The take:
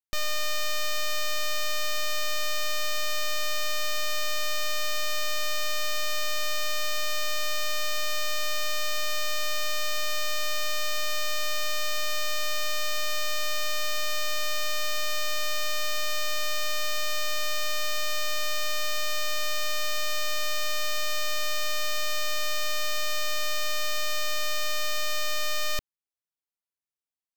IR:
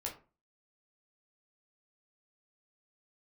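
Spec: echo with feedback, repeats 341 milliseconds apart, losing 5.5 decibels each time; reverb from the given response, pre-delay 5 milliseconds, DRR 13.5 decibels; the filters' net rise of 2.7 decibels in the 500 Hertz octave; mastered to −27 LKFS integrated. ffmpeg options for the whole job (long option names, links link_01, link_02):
-filter_complex "[0:a]equalizer=frequency=500:width_type=o:gain=3.5,aecho=1:1:341|682|1023|1364|1705|2046|2387:0.531|0.281|0.149|0.079|0.0419|0.0222|0.0118,asplit=2[link_01][link_02];[1:a]atrim=start_sample=2205,adelay=5[link_03];[link_02][link_03]afir=irnorm=-1:irlink=0,volume=-13.5dB[link_04];[link_01][link_04]amix=inputs=2:normalize=0"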